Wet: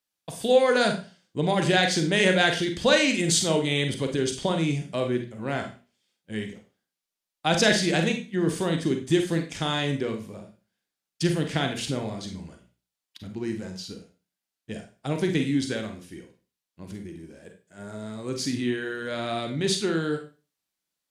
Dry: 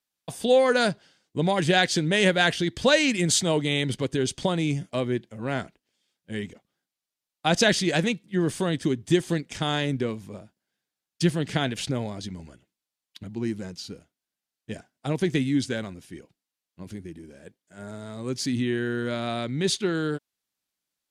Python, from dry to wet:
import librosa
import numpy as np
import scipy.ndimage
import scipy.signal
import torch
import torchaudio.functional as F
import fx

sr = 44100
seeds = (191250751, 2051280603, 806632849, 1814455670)

y = fx.hum_notches(x, sr, base_hz=60, count=4)
y = fx.rev_schroeder(y, sr, rt60_s=0.34, comb_ms=33, drr_db=4.5)
y = F.gain(torch.from_numpy(y), -1.0).numpy()